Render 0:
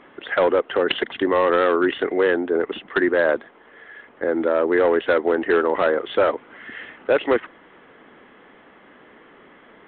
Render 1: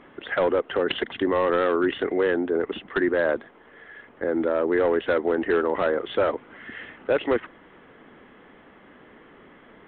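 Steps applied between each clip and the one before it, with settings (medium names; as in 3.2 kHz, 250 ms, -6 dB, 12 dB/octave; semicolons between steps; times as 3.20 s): bass shelf 200 Hz +9 dB; in parallel at -2 dB: peak limiter -15.5 dBFS, peak gain reduction 8 dB; on the sum: trim -8 dB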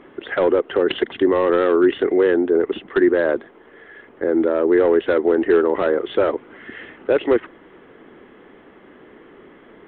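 peaking EQ 370 Hz +7.5 dB 0.74 oct; trim +1.5 dB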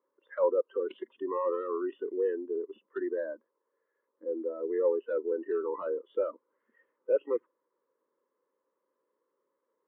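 two resonant band-passes 730 Hz, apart 0.89 oct; spectral noise reduction 21 dB; trim -4.5 dB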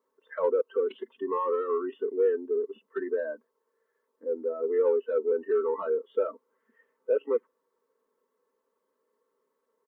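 comb 4.5 ms, depth 77%; in parallel at -11 dB: saturation -25 dBFS, distortion -13 dB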